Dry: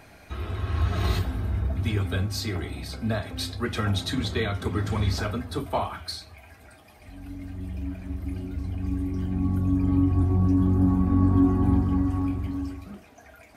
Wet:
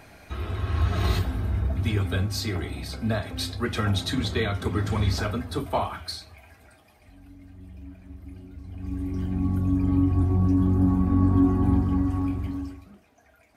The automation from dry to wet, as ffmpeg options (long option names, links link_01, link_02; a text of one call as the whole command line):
ffmpeg -i in.wav -af "volume=11dB,afade=type=out:start_time=5.9:duration=1.43:silence=0.281838,afade=type=in:start_time=8.65:duration=0.52:silence=0.316228,afade=type=out:start_time=12.49:duration=0.41:silence=0.354813" out.wav